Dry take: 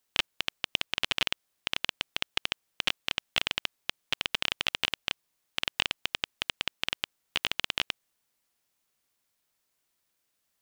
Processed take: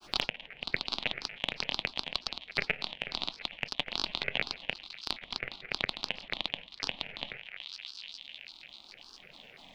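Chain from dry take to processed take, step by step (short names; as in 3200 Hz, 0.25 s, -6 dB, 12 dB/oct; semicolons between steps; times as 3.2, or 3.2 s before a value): air absorption 190 m; fixed phaser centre 350 Hz, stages 6; in parallel at +2 dB: limiter -21.5 dBFS, peak gain reduction 10.5 dB; on the sum: band shelf 7000 Hz -12 dB; thinning echo 0.139 s, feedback 82%, high-pass 720 Hz, level -19 dB; speed mistake 44.1 kHz file played as 48 kHz; shoebox room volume 310 m³, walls furnished, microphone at 0.4 m; upward compressor, threshold -26 dBFS; grains 0.1 s, pitch spread up and down by 7 st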